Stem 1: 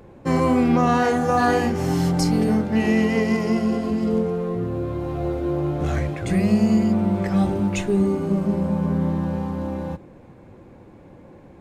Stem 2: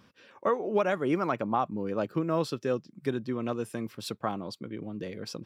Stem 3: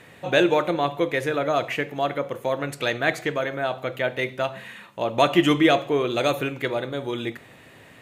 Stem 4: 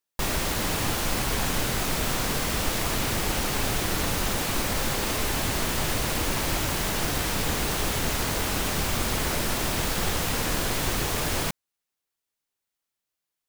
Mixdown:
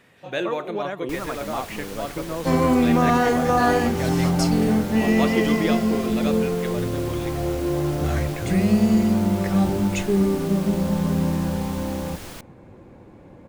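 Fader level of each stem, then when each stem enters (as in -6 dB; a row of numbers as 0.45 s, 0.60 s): 0.0 dB, -3.0 dB, -8.0 dB, -11.5 dB; 2.20 s, 0.00 s, 0.00 s, 0.90 s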